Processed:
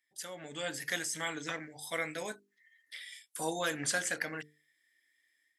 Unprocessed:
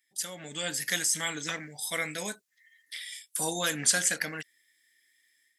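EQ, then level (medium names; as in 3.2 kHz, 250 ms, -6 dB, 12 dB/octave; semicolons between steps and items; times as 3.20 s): peaking EQ 190 Hz -9 dB 0.41 oct; treble shelf 2.7 kHz -11.5 dB; hum notches 50/100/150/200/250/300/350/400/450 Hz; 0.0 dB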